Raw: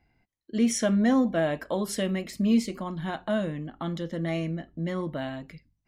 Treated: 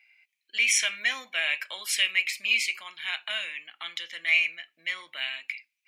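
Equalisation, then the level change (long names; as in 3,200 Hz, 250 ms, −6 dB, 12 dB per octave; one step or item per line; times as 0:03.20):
high-pass with resonance 2,400 Hz, resonance Q 9.7
+5.5 dB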